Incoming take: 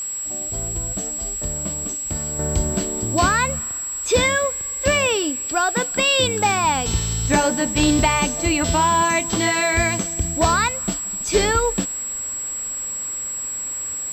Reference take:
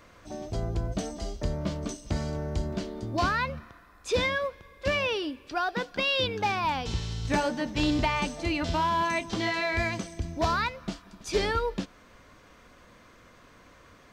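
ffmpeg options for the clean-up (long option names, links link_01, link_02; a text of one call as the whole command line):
ffmpeg -i in.wav -af "bandreject=frequency=7700:width=30,afwtdn=0.0063,asetnsamples=nb_out_samples=441:pad=0,asendcmd='2.39 volume volume -8.5dB',volume=0dB" out.wav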